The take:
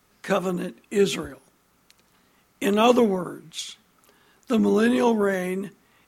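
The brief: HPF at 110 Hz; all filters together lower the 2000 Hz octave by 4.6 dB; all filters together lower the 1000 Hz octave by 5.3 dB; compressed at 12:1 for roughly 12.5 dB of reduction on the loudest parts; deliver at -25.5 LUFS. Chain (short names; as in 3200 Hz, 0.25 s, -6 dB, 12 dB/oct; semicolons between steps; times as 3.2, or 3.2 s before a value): HPF 110 Hz; bell 1000 Hz -6.5 dB; bell 2000 Hz -4 dB; compressor 12:1, threshold -27 dBFS; gain +8 dB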